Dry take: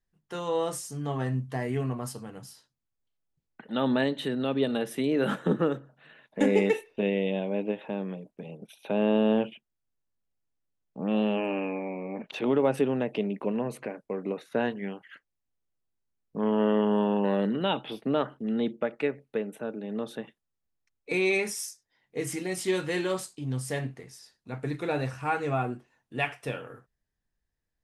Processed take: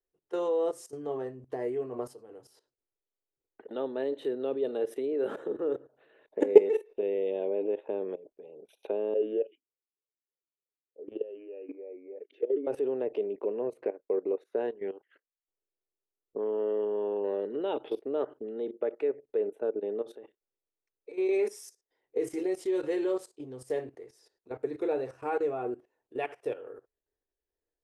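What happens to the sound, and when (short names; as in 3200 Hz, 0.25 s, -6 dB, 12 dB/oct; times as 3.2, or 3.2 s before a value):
9.14–12.67 vowel sweep e-i 3.3 Hz
13.55–17.02 transient shaper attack 0 dB, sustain -7 dB
20.01–21.29 compressor, threshold -33 dBFS
whole clip: tilt shelf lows +7.5 dB, about 720 Hz; level quantiser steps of 16 dB; resonant low shelf 270 Hz -14 dB, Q 3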